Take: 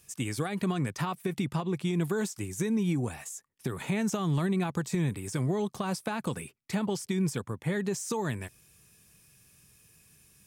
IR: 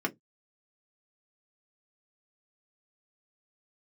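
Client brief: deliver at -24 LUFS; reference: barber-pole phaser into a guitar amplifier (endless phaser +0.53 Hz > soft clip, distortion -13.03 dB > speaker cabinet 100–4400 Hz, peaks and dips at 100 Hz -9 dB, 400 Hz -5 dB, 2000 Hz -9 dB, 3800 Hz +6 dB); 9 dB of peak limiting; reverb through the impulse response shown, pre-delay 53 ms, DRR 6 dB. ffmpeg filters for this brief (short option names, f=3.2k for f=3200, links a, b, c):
-filter_complex "[0:a]alimiter=level_in=2.5dB:limit=-24dB:level=0:latency=1,volume=-2.5dB,asplit=2[a][b];[1:a]atrim=start_sample=2205,adelay=53[c];[b][c]afir=irnorm=-1:irlink=0,volume=-13dB[d];[a][d]amix=inputs=2:normalize=0,asplit=2[e][f];[f]afreqshift=0.53[g];[e][g]amix=inputs=2:normalize=1,asoftclip=threshold=-32dB,highpass=100,equalizer=f=100:t=q:w=4:g=-9,equalizer=f=400:t=q:w=4:g=-5,equalizer=f=2k:t=q:w=4:g=-9,equalizer=f=3.8k:t=q:w=4:g=6,lowpass=f=4.4k:w=0.5412,lowpass=f=4.4k:w=1.3066,volume=17.5dB"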